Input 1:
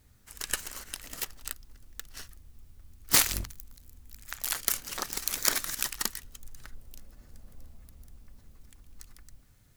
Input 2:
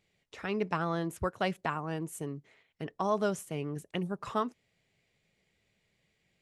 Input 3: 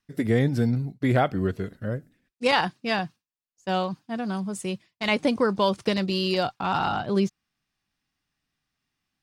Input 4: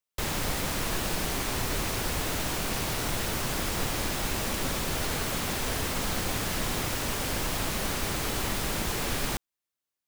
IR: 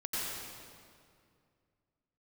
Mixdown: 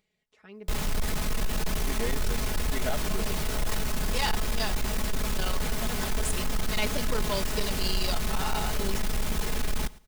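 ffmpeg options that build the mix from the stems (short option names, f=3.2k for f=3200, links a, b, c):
-filter_complex "[0:a]equalizer=f=750:t=o:w=2.4:g=15,adelay=550,volume=-18.5dB[a];[1:a]acompressor=mode=upward:threshold=-51dB:ratio=2.5,volume=-17dB[b];[2:a]bass=f=250:g=-14,treble=f=4k:g=13,adelay=1700,volume=-7dB[c];[3:a]lowshelf=f=110:g=12,adelay=500,volume=-2.5dB,asplit=2[d][e];[e]volume=-23dB,aecho=0:1:111|222|333|444:1|0.22|0.0484|0.0106[f];[a][b][c][d][f]amix=inputs=5:normalize=0,aecho=1:1:4.7:0.6,asoftclip=type=tanh:threshold=-20dB"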